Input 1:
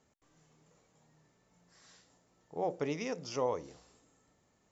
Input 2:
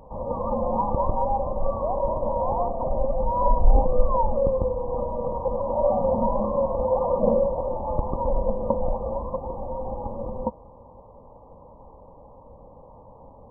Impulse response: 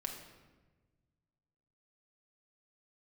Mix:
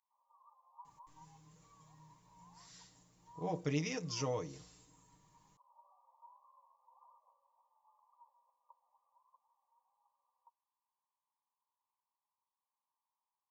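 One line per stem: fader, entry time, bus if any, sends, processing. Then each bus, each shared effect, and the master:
+2.5 dB, 0.85 s, no send, bass shelf 190 Hz +4 dB; comb 6.5 ms, depth 74%
-14.0 dB, 0.00 s, no send, steep high-pass 1 kHz 36 dB/octave; upward expansion 1.5:1, over -46 dBFS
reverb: none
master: peaking EQ 690 Hz -11.5 dB 2.8 oct

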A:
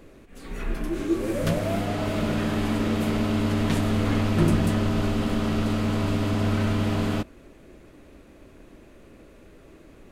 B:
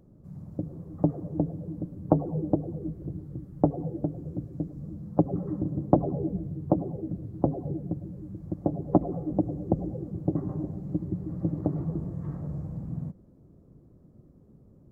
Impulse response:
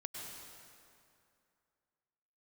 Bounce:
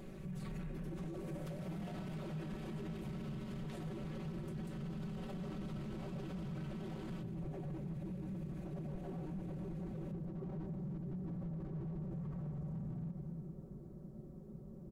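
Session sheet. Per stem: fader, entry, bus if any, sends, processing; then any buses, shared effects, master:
-5.0 dB, 0.00 s, send -10.5 dB, peak limiter -17.5 dBFS, peak gain reduction 9 dB; compression 10:1, threshold -34 dBFS, peak gain reduction 13 dB; AM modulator 210 Hz, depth 40%
-0.5 dB, 0.00 s, send -5.5 dB, compression 3:1, threshold -35 dBFS, peak gain reduction 16 dB; slew-rate limiter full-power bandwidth 2.7 Hz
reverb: on, RT60 2.5 s, pre-delay 92 ms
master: comb 5.3 ms, depth 77%; hard clipper -28 dBFS, distortion -24 dB; peak limiter -37 dBFS, peak gain reduction 9 dB

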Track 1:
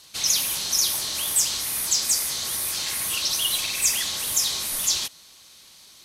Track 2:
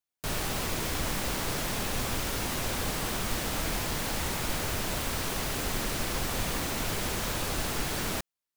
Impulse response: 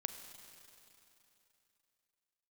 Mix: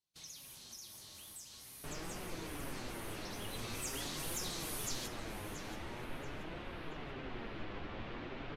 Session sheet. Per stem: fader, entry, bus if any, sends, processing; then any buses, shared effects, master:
3.35 s -21 dB -> 3.95 s -11.5 dB, 0.00 s, no send, echo send -12 dB, bass shelf 440 Hz +10.5 dB; compression 4:1, threshold -23 dBFS, peak gain reduction 6.5 dB
-4.5 dB, 1.60 s, no send, no echo send, low-pass 3.2 kHz 24 dB/octave; peaking EQ 340 Hz +5 dB 0.82 oct; flange 1.5 Hz, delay 5.7 ms, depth 9.6 ms, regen +79%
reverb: none
echo: feedback delay 680 ms, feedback 30%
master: gate -54 dBFS, range -19 dB; flange 0.45 Hz, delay 5.4 ms, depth 4.7 ms, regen +53%

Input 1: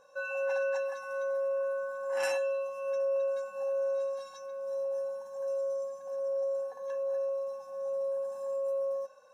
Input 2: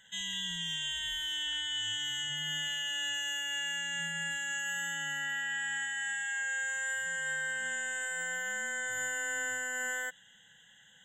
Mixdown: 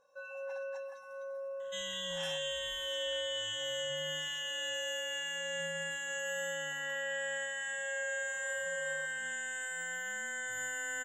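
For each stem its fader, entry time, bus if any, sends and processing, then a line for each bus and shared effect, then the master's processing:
-10.0 dB, 0.00 s, no send, none
-3.5 dB, 1.60 s, no send, none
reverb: none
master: none

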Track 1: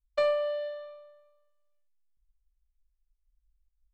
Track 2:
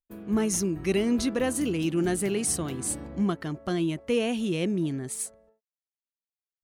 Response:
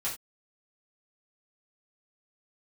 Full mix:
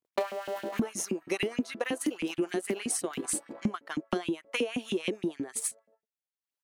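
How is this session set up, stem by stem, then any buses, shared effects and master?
0.0 dB, 0.00 s, no send, cycle switcher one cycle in 3, muted
+2.0 dB, 0.45 s, no send, none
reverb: none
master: transient shaper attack +8 dB, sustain -10 dB; LFO high-pass saw up 6.3 Hz 200–2800 Hz; compression 3:1, threshold -30 dBFS, peak gain reduction 14.5 dB

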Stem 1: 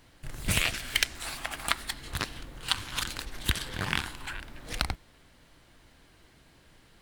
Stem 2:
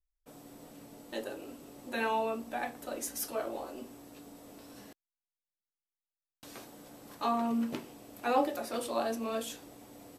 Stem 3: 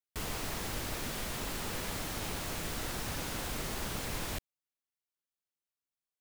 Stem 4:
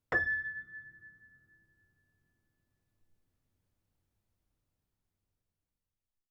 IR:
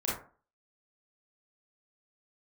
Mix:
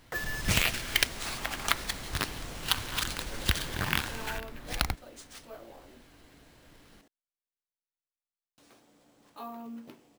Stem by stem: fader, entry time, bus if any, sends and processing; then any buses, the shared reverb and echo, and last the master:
+0.5 dB, 0.00 s, no send, none
-11.5 dB, 2.15 s, no send, none
-5.5 dB, 0.00 s, no send, none
-5.5 dB, 0.00 s, no send, bit crusher 6-bit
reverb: none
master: sample-rate reducer 15 kHz, jitter 0%

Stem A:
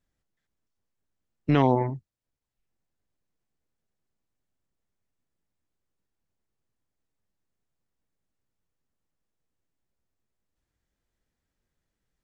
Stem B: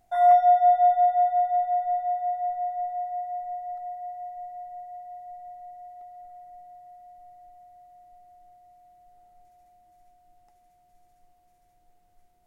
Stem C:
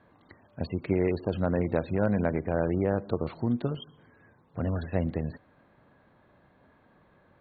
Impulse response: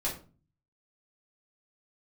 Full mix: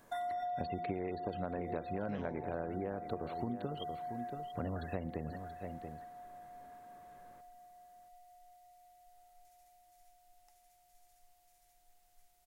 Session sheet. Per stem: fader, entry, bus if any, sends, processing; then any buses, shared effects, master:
-11.5 dB, 0.60 s, bus A, no send, no echo send, none
-4.5 dB, 0.00 s, bus A, no send, no echo send, peak limiter -22 dBFS, peak gain reduction 12 dB; peaking EQ 190 Hz -11 dB 2.7 oct
-1.0 dB, 0.00 s, no bus, no send, echo send -13.5 dB, peaking EQ 110 Hz -5.5 dB 1.6 oct; de-hum 173.5 Hz, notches 11
bus A: 0.0 dB, treble shelf 2.3 kHz +11.5 dB; compression, threshold -35 dBFS, peak gain reduction 9.5 dB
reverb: none
echo: delay 680 ms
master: compression 12:1, threshold -34 dBFS, peak gain reduction 12.5 dB

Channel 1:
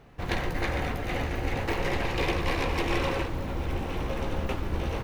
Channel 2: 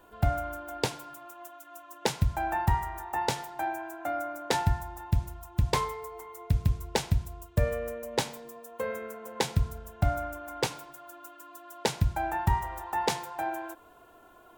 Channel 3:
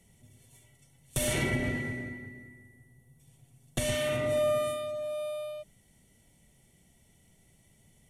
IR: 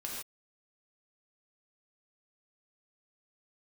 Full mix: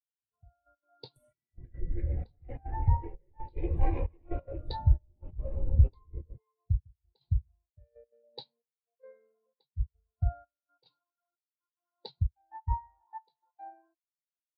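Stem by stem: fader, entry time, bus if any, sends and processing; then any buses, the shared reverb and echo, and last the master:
-1.0 dB, 1.35 s, send -14.5 dB, rotary cabinet horn 0.65 Hz
-5.5 dB, 0.20 s, no send, resonant low-pass 4.3 kHz, resonance Q 4.7
-4.5 dB, 0.00 s, no send, compression 2.5:1, threshold -39 dBFS, peak gain reduction 10 dB; reverb removal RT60 0.51 s; treble shelf 9.3 kHz +12 dB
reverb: on, pre-delay 3 ms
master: trance gate "xxxxx...x.x" 181 bpm -12 dB; spectral contrast expander 2.5:1

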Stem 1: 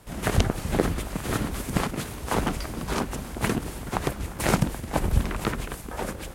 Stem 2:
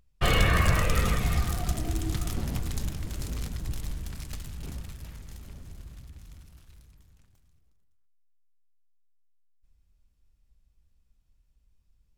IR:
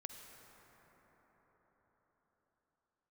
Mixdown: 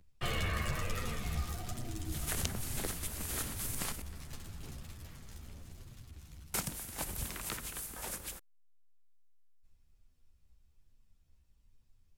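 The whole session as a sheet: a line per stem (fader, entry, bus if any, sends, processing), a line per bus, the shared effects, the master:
-2.0 dB, 2.05 s, muted 4.02–6.54 s, send -6 dB, pre-emphasis filter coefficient 0.9
-8.0 dB, 0.00 s, no send, chorus voices 2, 1.1 Hz, delay 11 ms, depth 3 ms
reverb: on, RT60 5.5 s, pre-delay 43 ms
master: three bands compressed up and down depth 40%

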